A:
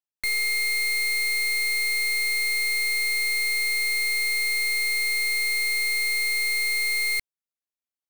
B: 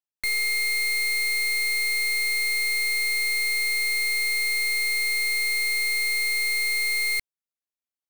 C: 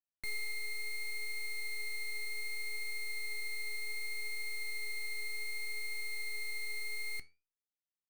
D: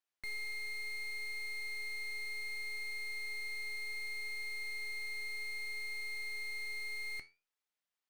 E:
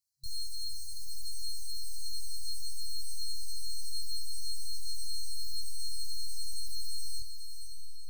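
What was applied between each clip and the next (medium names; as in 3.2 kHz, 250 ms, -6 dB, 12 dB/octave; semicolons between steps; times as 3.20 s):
no audible change
tilt shelf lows +5 dB, about 690 Hz; gain riding 0.5 s; flange 0.66 Hz, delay 9.9 ms, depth 5 ms, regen +77%; trim -8 dB
overdrive pedal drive 18 dB, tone 3.2 kHz, clips at -30.5 dBFS; trim -4.5 dB
chorus voices 4, 0.25 Hz, delay 23 ms, depth 1 ms; echo that smears into a reverb 502 ms, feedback 51%, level -7 dB; FFT band-reject 130–4000 Hz; trim +12 dB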